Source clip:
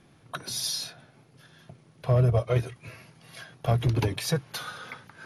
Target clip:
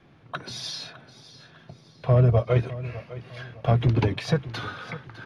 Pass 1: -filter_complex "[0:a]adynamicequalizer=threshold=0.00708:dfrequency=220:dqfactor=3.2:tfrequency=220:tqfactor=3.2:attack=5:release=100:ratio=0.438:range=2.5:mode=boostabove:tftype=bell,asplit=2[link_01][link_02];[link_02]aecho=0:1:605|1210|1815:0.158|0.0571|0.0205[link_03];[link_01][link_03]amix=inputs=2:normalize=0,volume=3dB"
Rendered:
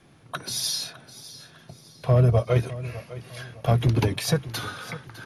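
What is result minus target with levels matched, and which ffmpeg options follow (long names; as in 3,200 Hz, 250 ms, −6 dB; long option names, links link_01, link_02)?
4,000 Hz band +4.5 dB
-filter_complex "[0:a]adynamicequalizer=threshold=0.00708:dfrequency=220:dqfactor=3.2:tfrequency=220:tqfactor=3.2:attack=5:release=100:ratio=0.438:range=2.5:mode=boostabove:tftype=bell,lowpass=3500,asplit=2[link_01][link_02];[link_02]aecho=0:1:605|1210|1815:0.158|0.0571|0.0205[link_03];[link_01][link_03]amix=inputs=2:normalize=0,volume=3dB"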